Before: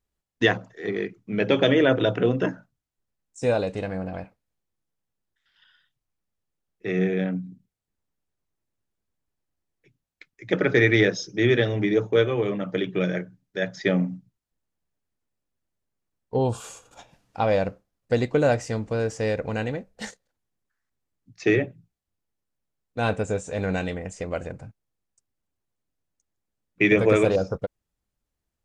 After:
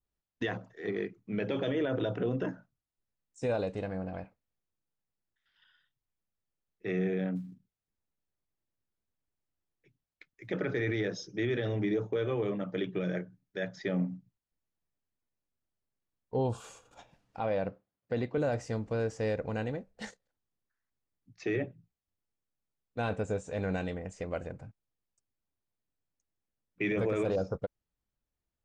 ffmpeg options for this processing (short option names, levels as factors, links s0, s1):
-filter_complex "[0:a]asplit=3[s0][s1][s2];[s0]afade=t=out:st=7.35:d=0.02[s3];[s1]acrusher=bits=8:mode=log:mix=0:aa=0.000001,afade=t=in:st=7.35:d=0.02,afade=t=out:st=10.49:d=0.02[s4];[s2]afade=t=in:st=10.49:d=0.02[s5];[s3][s4][s5]amix=inputs=3:normalize=0,asettb=1/sr,asplit=3[s6][s7][s8];[s6]atrim=end=17.394[s9];[s7]atrim=start=17.39:end=18.38,asetpts=PTS-STARTPTS,afade=t=in:d=0.004:c=qsin,afade=t=out:st=0.986:d=0.004:c=qsin,highpass=100,lowpass=4000[s10];[s8]atrim=start=18.376[s11];[s9][s10]acrossfade=d=0.004:c1=hsin:c2=qsin[s12];[s12][s11]acrossfade=d=0.004:c1=qsin:c2=hsin,highshelf=f=6500:g=-9.5,alimiter=limit=0.15:level=0:latency=1:release=26,adynamicequalizer=threshold=0.00631:dfrequency=2300:dqfactor=1.2:tfrequency=2300:tqfactor=1.2:attack=5:release=100:ratio=0.375:range=2.5:mode=cutabove:tftype=bell,volume=0.501"